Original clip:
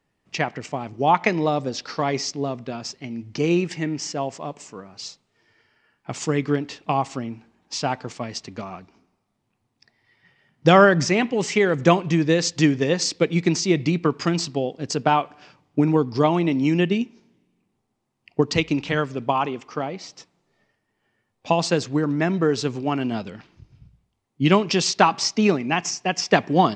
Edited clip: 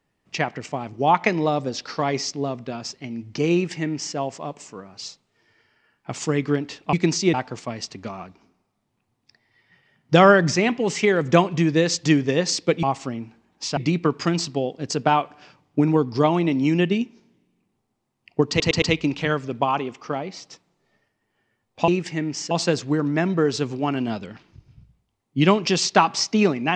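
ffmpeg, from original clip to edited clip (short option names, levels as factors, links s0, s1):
-filter_complex "[0:a]asplit=10[s0][s1][s2][s3][s4][s5][s6][s7][s8][s9];[s0]atrim=end=6.932[s10];[s1]atrim=start=13.358:end=13.772[s11];[s2]atrim=start=7.868:end=13.362[s12];[s3]atrim=start=6.928:end=7.872[s13];[s4]atrim=start=13.768:end=18.602[s14];[s5]atrim=start=18.488:end=18.602[s15];[s6]atrim=start=18.488:end=18.602[s16];[s7]atrim=start=18.488:end=21.552[s17];[s8]atrim=start=3.528:end=4.162[s18];[s9]atrim=start=21.548[s19];[s10][s11]acrossfade=d=0.004:c1=hsin:c2=hsin[s20];[s20][s12]acrossfade=d=0.004:c1=hsin:c2=hsin[s21];[s21][s13]acrossfade=d=0.004:c1=hsin:c2=hsin[s22];[s22][s14]acrossfade=d=0.004:c1=hsin:c2=hsin[s23];[s23][s15]acrossfade=d=0.004:c1=hsin:c2=hsin[s24];[s24][s16]acrossfade=d=0.004:c1=hsin:c2=hsin[s25];[s25][s17]acrossfade=d=0.004:c1=hsin:c2=hsin[s26];[s26][s18]acrossfade=d=0.004:c1=hsin:c2=hsin[s27];[s27][s19]acrossfade=d=0.004:c1=hsin:c2=hsin"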